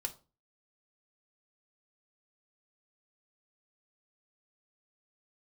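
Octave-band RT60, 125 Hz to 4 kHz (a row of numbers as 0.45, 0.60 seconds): 0.50, 0.45, 0.35, 0.35, 0.25, 0.25 seconds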